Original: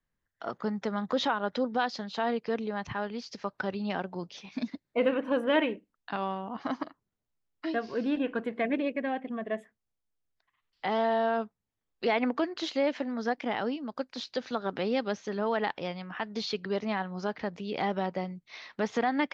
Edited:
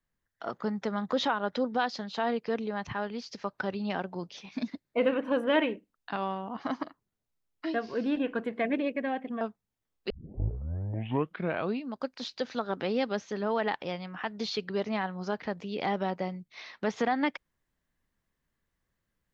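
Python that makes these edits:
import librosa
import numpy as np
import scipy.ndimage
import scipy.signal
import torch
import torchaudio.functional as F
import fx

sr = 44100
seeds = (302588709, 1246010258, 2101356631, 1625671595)

y = fx.edit(x, sr, fx.cut(start_s=9.41, length_s=1.96),
    fx.tape_start(start_s=12.06, length_s=1.84), tone=tone)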